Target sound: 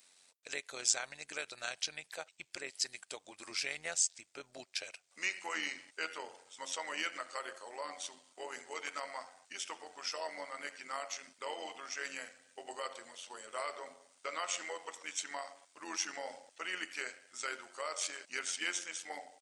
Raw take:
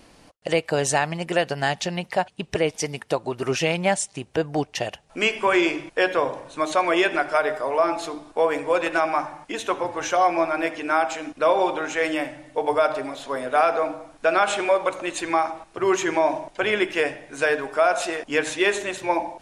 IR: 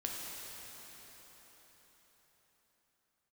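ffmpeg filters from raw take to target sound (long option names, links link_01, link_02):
-af "asetrate=38170,aresample=44100,atempo=1.15535,aderivative,tremolo=f=90:d=0.571"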